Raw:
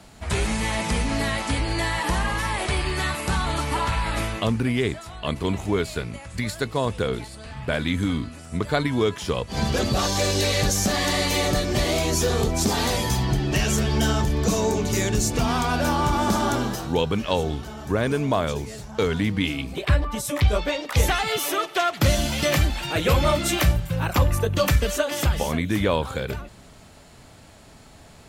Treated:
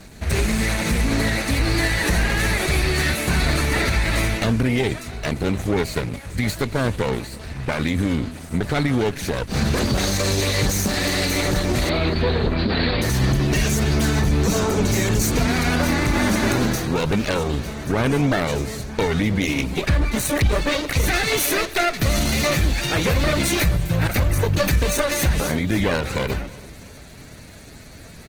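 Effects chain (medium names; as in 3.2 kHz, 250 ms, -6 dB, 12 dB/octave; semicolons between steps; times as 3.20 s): comb filter that takes the minimum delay 0.48 ms; 11.89–13.02 s: steep low-pass 4.6 kHz 96 dB/octave; peak limiter -18.5 dBFS, peak gain reduction 9.5 dB; feedback delay 324 ms, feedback 53%, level -22 dB; trim +7.5 dB; Opus 16 kbps 48 kHz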